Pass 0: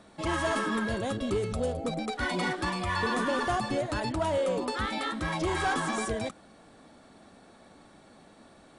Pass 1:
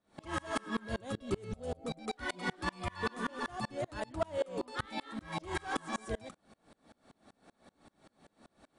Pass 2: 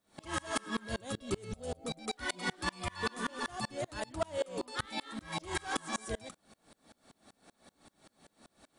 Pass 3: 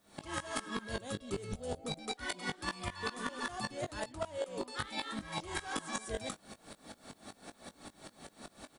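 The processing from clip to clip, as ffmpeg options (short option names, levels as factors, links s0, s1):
-af "aeval=exprs='val(0)*pow(10,-31*if(lt(mod(-5.2*n/s,1),2*abs(-5.2)/1000),1-mod(-5.2*n/s,1)/(2*abs(-5.2)/1000),(mod(-5.2*n/s,1)-2*abs(-5.2)/1000)/(1-2*abs(-5.2)/1000))/20)':c=same"
-af "highshelf=f=3300:g=10,volume=0.891"
-filter_complex "[0:a]asplit=2[s0][s1];[s1]adelay=20,volume=0.316[s2];[s0][s2]amix=inputs=2:normalize=0,areverse,acompressor=threshold=0.00501:ratio=5,areverse,volume=2.99"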